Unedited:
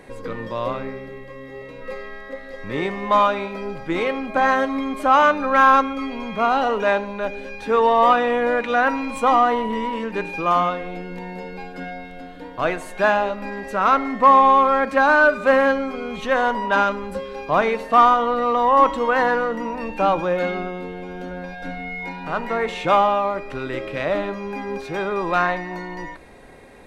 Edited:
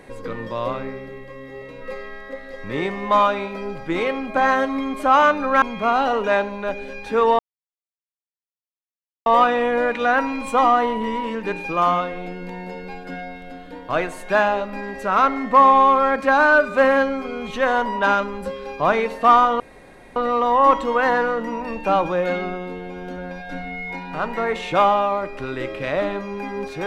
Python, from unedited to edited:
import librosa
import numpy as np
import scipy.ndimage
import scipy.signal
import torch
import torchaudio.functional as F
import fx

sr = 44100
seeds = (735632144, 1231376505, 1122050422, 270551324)

y = fx.edit(x, sr, fx.cut(start_s=5.62, length_s=0.56),
    fx.insert_silence(at_s=7.95, length_s=1.87),
    fx.insert_room_tone(at_s=18.29, length_s=0.56), tone=tone)